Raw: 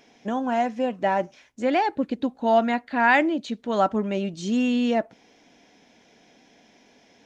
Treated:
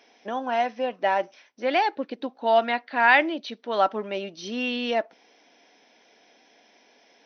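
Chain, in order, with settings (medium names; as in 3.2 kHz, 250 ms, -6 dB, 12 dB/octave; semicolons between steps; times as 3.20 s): high-pass 400 Hz 12 dB/octave; dynamic bell 3.3 kHz, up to +5 dB, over -39 dBFS, Q 0.97; brick-wall FIR low-pass 6.2 kHz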